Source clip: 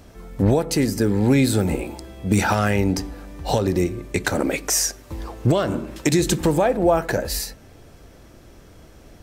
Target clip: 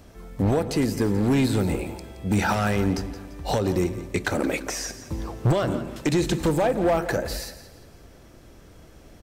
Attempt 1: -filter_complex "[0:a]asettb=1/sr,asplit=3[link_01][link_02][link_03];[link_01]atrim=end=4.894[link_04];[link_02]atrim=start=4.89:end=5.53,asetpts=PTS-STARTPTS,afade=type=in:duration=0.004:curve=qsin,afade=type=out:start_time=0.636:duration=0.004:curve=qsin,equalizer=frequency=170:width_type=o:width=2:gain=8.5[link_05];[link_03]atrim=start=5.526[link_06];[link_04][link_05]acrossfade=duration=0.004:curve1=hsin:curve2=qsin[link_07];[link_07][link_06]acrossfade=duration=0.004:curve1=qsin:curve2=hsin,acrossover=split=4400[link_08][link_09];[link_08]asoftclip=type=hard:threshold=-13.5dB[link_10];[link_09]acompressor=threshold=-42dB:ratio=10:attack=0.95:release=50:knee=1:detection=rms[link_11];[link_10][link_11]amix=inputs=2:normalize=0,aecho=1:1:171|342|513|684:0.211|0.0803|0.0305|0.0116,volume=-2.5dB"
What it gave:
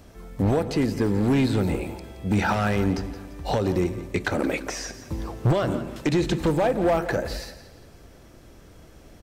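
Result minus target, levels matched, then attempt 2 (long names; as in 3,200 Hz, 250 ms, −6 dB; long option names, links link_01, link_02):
downward compressor: peak gain reduction +10 dB
-filter_complex "[0:a]asettb=1/sr,asplit=3[link_01][link_02][link_03];[link_01]atrim=end=4.894[link_04];[link_02]atrim=start=4.89:end=5.53,asetpts=PTS-STARTPTS,afade=type=in:duration=0.004:curve=qsin,afade=type=out:start_time=0.636:duration=0.004:curve=qsin,equalizer=frequency=170:width_type=o:width=2:gain=8.5[link_05];[link_03]atrim=start=5.526[link_06];[link_04][link_05]acrossfade=duration=0.004:curve1=hsin:curve2=qsin[link_07];[link_07][link_06]acrossfade=duration=0.004:curve1=qsin:curve2=hsin,acrossover=split=4400[link_08][link_09];[link_08]asoftclip=type=hard:threshold=-13.5dB[link_10];[link_09]acompressor=threshold=-31dB:ratio=10:attack=0.95:release=50:knee=1:detection=rms[link_11];[link_10][link_11]amix=inputs=2:normalize=0,aecho=1:1:171|342|513|684:0.211|0.0803|0.0305|0.0116,volume=-2.5dB"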